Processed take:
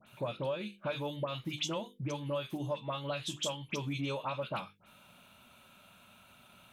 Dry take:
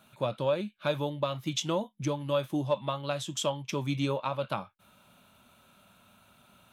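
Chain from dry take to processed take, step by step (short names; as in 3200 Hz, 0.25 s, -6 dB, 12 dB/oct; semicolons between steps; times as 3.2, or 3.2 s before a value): bell 2600 Hz +5 dB 0.8 oct; dispersion highs, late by 68 ms, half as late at 2100 Hz; compressor 4:1, threshold -33 dBFS, peak gain reduction 10 dB; notches 50/100/150/200/250/300/350/400/450/500 Hz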